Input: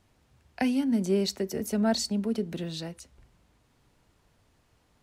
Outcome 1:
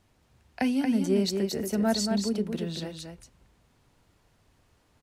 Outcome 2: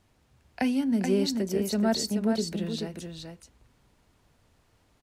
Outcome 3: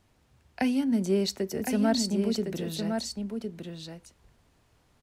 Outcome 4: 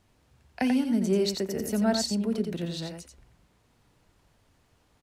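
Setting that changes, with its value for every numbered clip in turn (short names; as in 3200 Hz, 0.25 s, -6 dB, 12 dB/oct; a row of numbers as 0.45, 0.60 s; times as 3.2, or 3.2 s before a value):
echo, time: 230, 429, 1060, 88 ms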